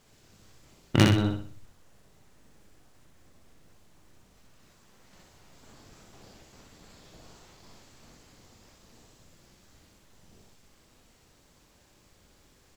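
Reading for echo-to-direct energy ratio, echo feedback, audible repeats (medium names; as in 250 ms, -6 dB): -3.0 dB, 39%, 4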